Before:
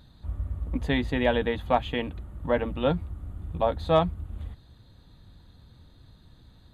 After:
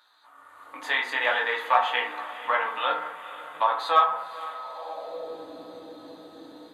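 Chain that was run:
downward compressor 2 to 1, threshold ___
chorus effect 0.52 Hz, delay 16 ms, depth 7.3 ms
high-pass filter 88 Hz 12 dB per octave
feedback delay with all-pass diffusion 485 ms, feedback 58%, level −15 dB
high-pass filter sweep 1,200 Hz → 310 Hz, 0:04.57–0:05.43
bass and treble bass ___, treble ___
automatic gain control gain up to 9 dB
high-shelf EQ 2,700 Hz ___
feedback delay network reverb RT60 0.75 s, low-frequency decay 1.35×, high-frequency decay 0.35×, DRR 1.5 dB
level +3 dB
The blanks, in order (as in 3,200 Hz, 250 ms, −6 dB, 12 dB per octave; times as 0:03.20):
−29 dBFS, −10 dB, +5 dB, −5.5 dB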